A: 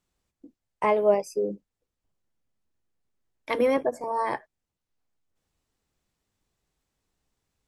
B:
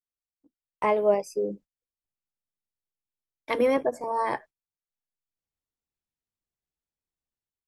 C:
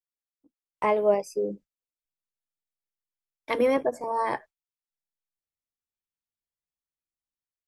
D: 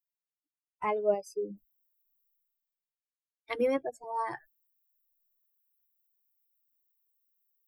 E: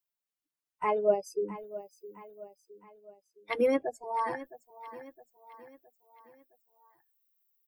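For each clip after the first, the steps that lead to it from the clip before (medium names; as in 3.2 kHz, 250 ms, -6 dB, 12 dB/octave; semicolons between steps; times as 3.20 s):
gate -45 dBFS, range -20 dB; level rider gain up to 11 dB; trim -9 dB
spectral noise reduction 8 dB
expander on every frequency bin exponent 2; reverse; upward compressor, threshold -46 dBFS; reverse; trim -3.5 dB
coarse spectral quantiser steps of 15 dB; feedback delay 664 ms, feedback 48%, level -15.5 dB; trim +2.5 dB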